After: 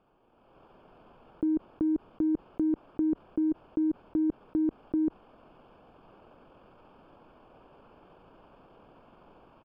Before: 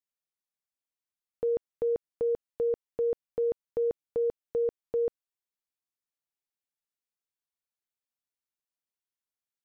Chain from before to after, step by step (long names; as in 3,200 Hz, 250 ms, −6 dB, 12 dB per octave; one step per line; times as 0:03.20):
adaptive Wiener filter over 15 samples
parametric band 130 Hz −6.5 dB 2 octaves
pitch shifter −7 semitones
brickwall limiter −34 dBFS, peak gain reduction 9.5 dB
automatic gain control gain up to 12 dB
high-frequency loss of the air 450 metres
envelope flattener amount 100%